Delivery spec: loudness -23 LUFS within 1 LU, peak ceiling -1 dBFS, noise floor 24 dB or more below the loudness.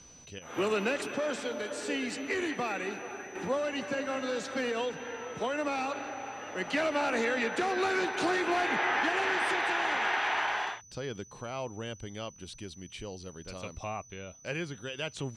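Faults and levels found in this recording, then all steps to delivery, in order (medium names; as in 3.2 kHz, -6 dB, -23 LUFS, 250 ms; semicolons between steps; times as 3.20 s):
steady tone 6 kHz; tone level -53 dBFS; loudness -32.0 LUFS; peak level -18.0 dBFS; loudness target -23.0 LUFS
-> band-stop 6 kHz, Q 30; trim +9 dB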